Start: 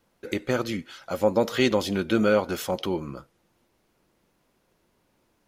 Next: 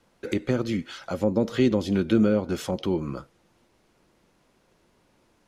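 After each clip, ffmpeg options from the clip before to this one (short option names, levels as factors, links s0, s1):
-filter_complex "[0:a]lowpass=9900,acrossover=split=390[s0][s1];[s1]acompressor=threshold=0.0126:ratio=4[s2];[s0][s2]amix=inputs=2:normalize=0,volume=1.68"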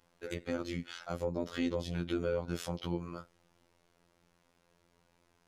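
-filter_complex "[0:a]equalizer=f=300:t=o:w=0.88:g=-5.5,asplit=2[s0][s1];[s1]alimiter=limit=0.075:level=0:latency=1:release=372,volume=1[s2];[s0][s2]amix=inputs=2:normalize=0,afftfilt=real='hypot(re,im)*cos(PI*b)':imag='0':win_size=2048:overlap=0.75,volume=0.398"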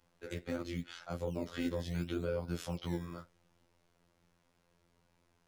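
-filter_complex "[0:a]acrossover=split=200[s0][s1];[s0]acrusher=samples=17:mix=1:aa=0.000001:lfo=1:lforange=17:lforate=0.73[s2];[s1]flanger=delay=3.2:depth=5.6:regen=-70:speed=1.7:shape=triangular[s3];[s2][s3]amix=inputs=2:normalize=0,volume=1.12"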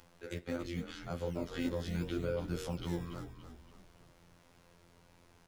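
-filter_complex "[0:a]acompressor=mode=upward:threshold=0.00251:ratio=2.5,asplit=2[s0][s1];[s1]asplit=5[s2][s3][s4][s5][s6];[s2]adelay=285,afreqshift=-51,volume=0.316[s7];[s3]adelay=570,afreqshift=-102,volume=0.148[s8];[s4]adelay=855,afreqshift=-153,volume=0.07[s9];[s5]adelay=1140,afreqshift=-204,volume=0.0327[s10];[s6]adelay=1425,afreqshift=-255,volume=0.0155[s11];[s7][s8][s9][s10][s11]amix=inputs=5:normalize=0[s12];[s0][s12]amix=inputs=2:normalize=0"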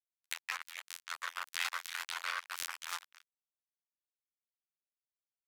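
-af "aresample=32000,aresample=44100,acrusher=bits=4:mix=0:aa=0.5,highpass=f=1300:w=0.5412,highpass=f=1300:w=1.3066,volume=3.16"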